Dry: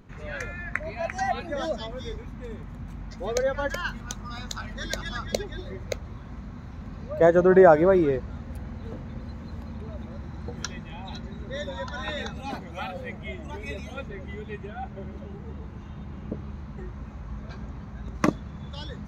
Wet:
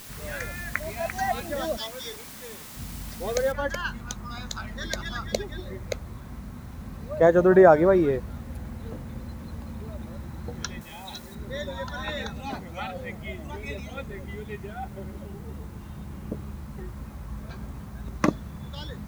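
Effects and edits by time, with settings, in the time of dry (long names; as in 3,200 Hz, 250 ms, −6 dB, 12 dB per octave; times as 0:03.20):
0:01.77–0:02.77: RIAA equalisation recording
0:03.52: noise floor change −44 dB −60 dB
0:10.81–0:11.35: bass and treble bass −9 dB, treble +9 dB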